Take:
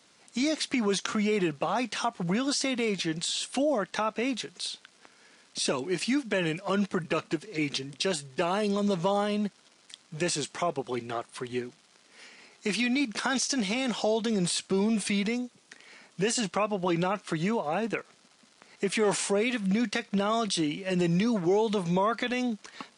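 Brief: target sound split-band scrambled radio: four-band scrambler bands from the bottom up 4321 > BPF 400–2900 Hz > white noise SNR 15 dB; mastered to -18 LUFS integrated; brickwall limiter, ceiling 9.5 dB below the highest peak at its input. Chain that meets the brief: limiter -20 dBFS; four-band scrambler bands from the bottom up 4321; BPF 400–2900 Hz; white noise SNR 15 dB; gain +17.5 dB

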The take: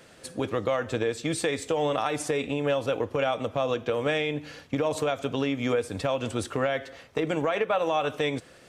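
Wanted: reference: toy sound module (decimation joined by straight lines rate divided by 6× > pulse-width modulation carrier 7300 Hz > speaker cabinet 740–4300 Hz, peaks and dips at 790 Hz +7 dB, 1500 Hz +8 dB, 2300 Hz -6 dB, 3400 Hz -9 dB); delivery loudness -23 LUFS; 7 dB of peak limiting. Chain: limiter -19.5 dBFS; decimation joined by straight lines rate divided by 6×; pulse-width modulation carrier 7300 Hz; speaker cabinet 740–4300 Hz, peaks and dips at 790 Hz +7 dB, 1500 Hz +8 dB, 2300 Hz -6 dB, 3400 Hz -9 dB; gain +11.5 dB

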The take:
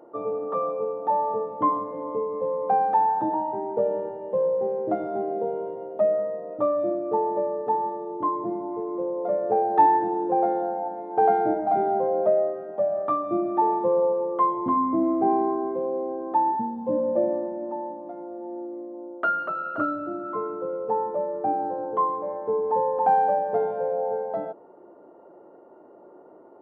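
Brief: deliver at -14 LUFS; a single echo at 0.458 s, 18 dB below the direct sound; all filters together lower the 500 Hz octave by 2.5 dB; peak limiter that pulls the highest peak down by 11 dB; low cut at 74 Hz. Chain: HPF 74 Hz; bell 500 Hz -3 dB; limiter -19 dBFS; echo 0.458 s -18 dB; gain +14.5 dB

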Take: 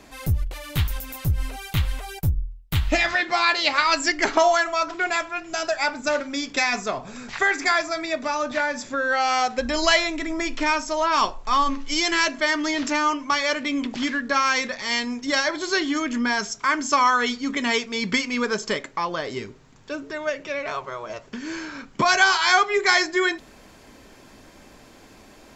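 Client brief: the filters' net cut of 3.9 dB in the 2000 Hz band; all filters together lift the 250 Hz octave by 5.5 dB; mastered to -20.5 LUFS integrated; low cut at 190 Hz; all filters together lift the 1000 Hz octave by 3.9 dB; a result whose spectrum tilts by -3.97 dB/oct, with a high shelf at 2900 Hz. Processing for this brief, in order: HPF 190 Hz; bell 250 Hz +7.5 dB; bell 1000 Hz +7 dB; bell 2000 Hz -6.5 dB; high shelf 2900 Hz -5 dB; gain +0.5 dB

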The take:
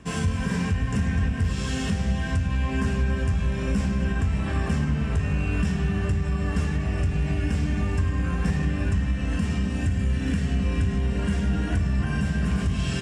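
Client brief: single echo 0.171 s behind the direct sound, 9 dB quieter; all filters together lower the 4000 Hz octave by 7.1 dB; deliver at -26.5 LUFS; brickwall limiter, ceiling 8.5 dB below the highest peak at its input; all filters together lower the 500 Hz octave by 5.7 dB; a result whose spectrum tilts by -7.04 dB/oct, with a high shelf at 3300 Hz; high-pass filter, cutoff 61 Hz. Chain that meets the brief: HPF 61 Hz; bell 500 Hz -7.5 dB; high shelf 3300 Hz -7.5 dB; bell 4000 Hz -5 dB; limiter -23 dBFS; echo 0.171 s -9 dB; gain +4.5 dB

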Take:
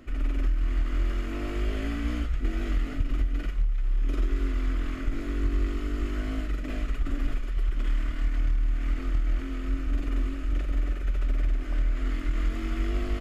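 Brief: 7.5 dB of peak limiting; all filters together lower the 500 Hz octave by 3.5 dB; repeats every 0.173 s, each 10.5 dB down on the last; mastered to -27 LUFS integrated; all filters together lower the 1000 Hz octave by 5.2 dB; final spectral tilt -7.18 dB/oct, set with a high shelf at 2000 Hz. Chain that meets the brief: bell 500 Hz -4 dB; bell 1000 Hz -5 dB; high shelf 2000 Hz -4.5 dB; limiter -22 dBFS; feedback echo 0.173 s, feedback 30%, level -10.5 dB; gain +6 dB

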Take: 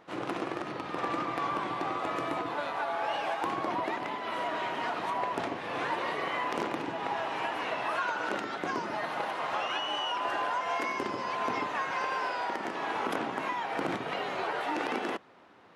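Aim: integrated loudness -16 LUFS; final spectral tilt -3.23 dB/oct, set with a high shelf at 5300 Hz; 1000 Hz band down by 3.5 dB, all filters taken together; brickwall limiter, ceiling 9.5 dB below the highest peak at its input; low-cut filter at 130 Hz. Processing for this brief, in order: HPF 130 Hz; bell 1000 Hz -4.5 dB; high shelf 5300 Hz +6 dB; gain +19.5 dB; limiter -6.5 dBFS

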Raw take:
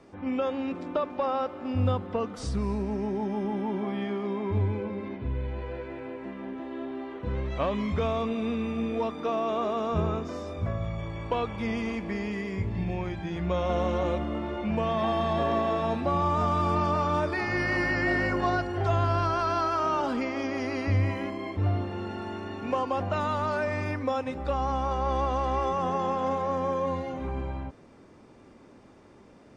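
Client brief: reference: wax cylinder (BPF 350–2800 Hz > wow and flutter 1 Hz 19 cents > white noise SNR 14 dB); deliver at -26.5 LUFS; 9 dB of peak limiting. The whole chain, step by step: limiter -23 dBFS; BPF 350–2800 Hz; wow and flutter 1 Hz 19 cents; white noise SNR 14 dB; gain +8 dB

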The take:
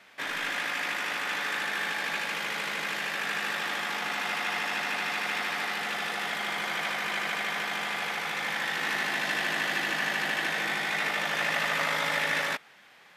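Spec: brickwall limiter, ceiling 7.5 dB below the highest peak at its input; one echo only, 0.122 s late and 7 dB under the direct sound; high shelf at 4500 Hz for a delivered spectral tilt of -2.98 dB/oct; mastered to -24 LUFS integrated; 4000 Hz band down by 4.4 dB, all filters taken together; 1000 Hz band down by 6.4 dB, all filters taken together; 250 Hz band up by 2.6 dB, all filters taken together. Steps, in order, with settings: bell 250 Hz +4 dB; bell 1000 Hz -9 dB; bell 4000 Hz -7 dB; high shelf 4500 Hz +3.5 dB; limiter -25.5 dBFS; echo 0.122 s -7 dB; gain +9 dB

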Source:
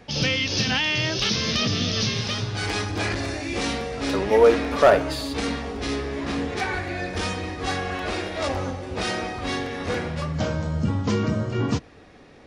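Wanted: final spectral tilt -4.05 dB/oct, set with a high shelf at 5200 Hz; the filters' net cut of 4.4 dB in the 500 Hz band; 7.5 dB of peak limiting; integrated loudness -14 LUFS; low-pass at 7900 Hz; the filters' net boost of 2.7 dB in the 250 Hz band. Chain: LPF 7900 Hz; bell 250 Hz +5 dB; bell 500 Hz -6.5 dB; high shelf 5200 Hz -3 dB; gain +12.5 dB; limiter -3 dBFS

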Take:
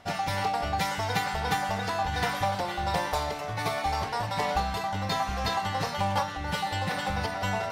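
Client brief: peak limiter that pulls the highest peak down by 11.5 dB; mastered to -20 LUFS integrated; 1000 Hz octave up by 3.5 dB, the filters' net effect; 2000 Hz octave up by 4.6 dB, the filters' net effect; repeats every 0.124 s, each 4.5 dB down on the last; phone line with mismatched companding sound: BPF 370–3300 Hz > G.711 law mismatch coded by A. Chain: bell 1000 Hz +4 dB; bell 2000 Hz +5 dB; limiter -21.5 dBFS; BPF 370–3300 Hz; feedback echo 0.124 s, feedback 60%, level -4.5 dB; G.711 law mismatch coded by A; gain +10 dB

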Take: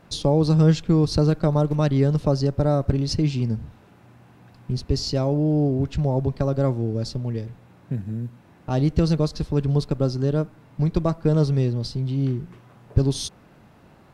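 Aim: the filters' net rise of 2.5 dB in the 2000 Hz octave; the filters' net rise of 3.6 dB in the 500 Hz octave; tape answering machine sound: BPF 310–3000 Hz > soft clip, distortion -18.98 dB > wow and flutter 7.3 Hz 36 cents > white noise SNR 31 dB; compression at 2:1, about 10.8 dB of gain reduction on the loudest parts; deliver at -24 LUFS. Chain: bell 500 Hz +5 dB; bell 2000 Hz +4 dB; compressor 2:1, threshold -31 dBFS; BPF 310–3000 Hz; soft clip -21.5 dBFS; wow and flutter 7.3 Hz 36 cents; white noise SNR 31 dB; gain +11 dB

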